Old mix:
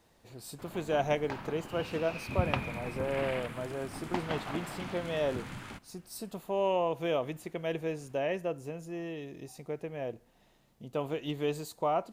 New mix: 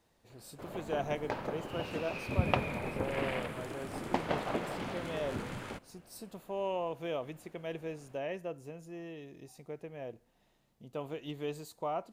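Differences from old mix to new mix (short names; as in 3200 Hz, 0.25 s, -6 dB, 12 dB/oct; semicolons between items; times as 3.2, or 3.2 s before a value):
speech -6.0 dB; background: add bell 500 Hz +10.5 dB 0.91 oct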